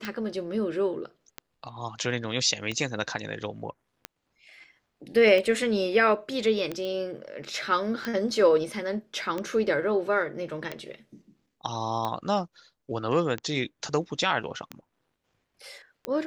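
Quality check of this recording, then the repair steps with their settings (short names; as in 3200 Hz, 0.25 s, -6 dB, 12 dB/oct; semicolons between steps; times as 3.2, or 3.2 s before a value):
tick 45 rpm -17 dBFS
6.85 pop -23 dBFS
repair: de-click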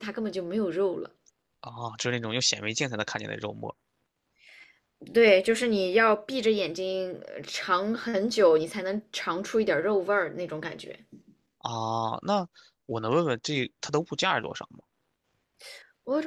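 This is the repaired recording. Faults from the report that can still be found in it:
none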